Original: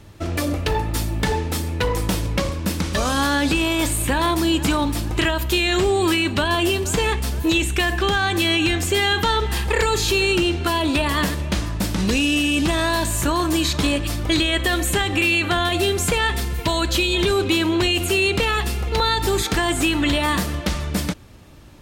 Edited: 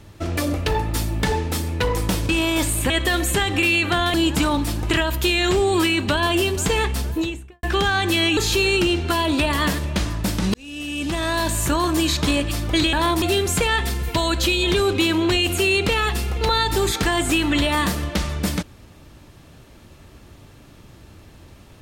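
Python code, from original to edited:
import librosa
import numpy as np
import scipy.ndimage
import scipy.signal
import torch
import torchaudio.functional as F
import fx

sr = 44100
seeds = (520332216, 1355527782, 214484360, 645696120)

y = fx.studio_fade_out(x, sr, start_s=7.22, length_s=0.69)
y = fx.edit(y, sr, fx.cut(start_s=2.29, length_s=1.23),
    fx.swap(start_s=4.13, length_s=0.29, other_s=14.49, other_length_s=1.24),
    fx.cut(start_s=8.65, length_s=1.28),
    fx.fade_in_span(start_s=12.1, length_s=0.98), tone=tone)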